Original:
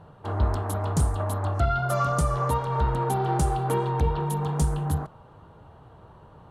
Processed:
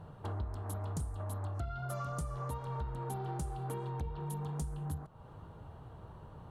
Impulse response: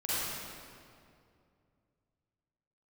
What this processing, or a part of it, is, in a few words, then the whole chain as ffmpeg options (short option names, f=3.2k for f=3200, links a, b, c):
ASMR close-microphone chain: -af "lowshelf=f=200:g=6.5,acompressor=threshold=-33dB:ratio=5,highshelf=f=6.9k:g=6,volume=-4.5dB"